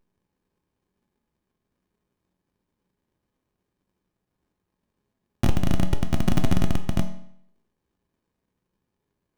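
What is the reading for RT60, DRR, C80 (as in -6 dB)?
0.70 s, 6.0 dB, 14.0 dB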